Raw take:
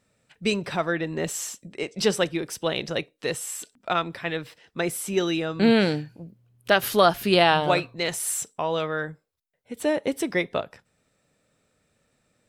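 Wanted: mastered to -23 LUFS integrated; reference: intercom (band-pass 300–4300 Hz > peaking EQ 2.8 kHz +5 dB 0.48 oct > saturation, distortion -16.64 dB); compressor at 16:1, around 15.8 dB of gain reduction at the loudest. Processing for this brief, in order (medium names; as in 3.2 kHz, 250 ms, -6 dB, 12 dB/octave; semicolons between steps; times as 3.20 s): compression 16:1, threshold -29 dBFS; band-pass 300–4300 Hz; peaking EQ 2.8 kHz +5 dB 0.48 oct; saturation -24.5 dBFS; trim +14.5 dB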